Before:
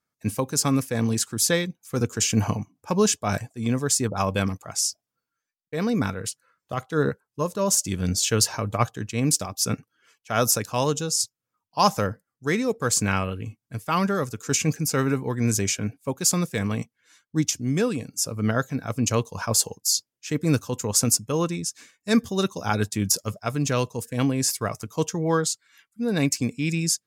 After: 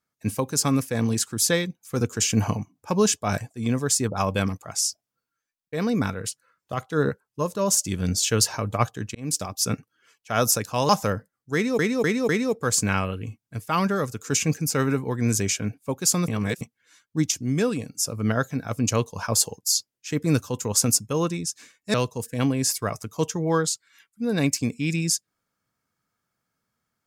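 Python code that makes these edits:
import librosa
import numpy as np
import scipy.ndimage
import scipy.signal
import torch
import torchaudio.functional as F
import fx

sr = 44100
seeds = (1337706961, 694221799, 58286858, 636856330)

y = fx.edit(x, sr, fx.fade_in_span(start_s=9.15, length_s=0.29),
    fx.cut(start_s=10.89, length_s=0.94),
    fx.repeat(start_s=12.48, length_s=0.25, count=4),
    fx.reverse_span(start_s=16.47, length_s=0.33),
    fx.cut(start_s=22.13, length_s=1.6), tone=tone)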